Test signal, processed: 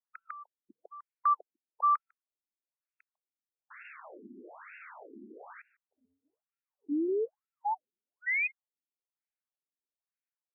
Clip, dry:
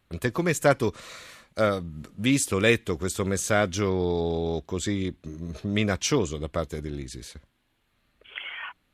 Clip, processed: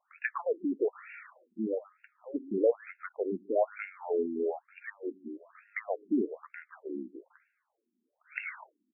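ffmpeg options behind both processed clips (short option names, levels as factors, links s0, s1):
-filter_complex "[0:a]asplit=2[s0][s1];[s1]adelay=150,highpass=300,lowpass=3400,asoftclip=type=hard:threshold=0.15,volume=0.0794[s2];[s0][s2]amix=inputs=2:normalize=0,afftfilt=real='re*between(b*sr/1024,260*pow(2000/260,0.5+0.5*sin(2*PI*1.1*pts/sr))/1.41,260*pow(2000/260,0.5+0.5*sin(2*PI*1.1*pts/sr))*1.41)':imag='im*between(b*sr/1024,260*pow(2000/260,0.5+0.5*sin(2*PI*1.1*pts/sr))/1.41,260*pow(2000/260,0.5+0.5*sin(2*PI*1.1*pts/sr))*1.41)':win_size=1024:overlap=0.75"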